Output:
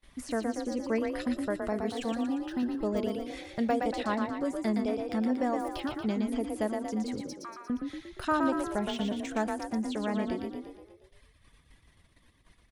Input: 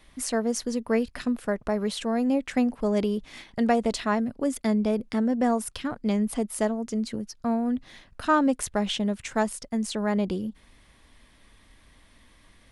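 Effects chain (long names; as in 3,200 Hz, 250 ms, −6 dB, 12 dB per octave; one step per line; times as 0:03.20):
0:05.27–0:05.75: running median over 3 samples
0:07.21–0:07.70: Chebyshev high-pass filter 1,100 Hz, order 4
reverb reduction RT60 1.3 s
de-essing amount 95%
noise gate −57 dBFS, range −23 dB
in parallel at 0 dB: downward compressor, threshold −33 dBFS, peak gain reduction 14 dB
0:02.12–0:02.63: on the sum: phaser with its sweep stopped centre 2,200 Hz, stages 6
echo with shifted repeats 117 ms, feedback 55%, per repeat +32 Hz, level −4.5 dB
on a send at −19 dB: convolution reverb RT60 1.0 s, pre-delay 3 ms
on the sum: level −7.5 dB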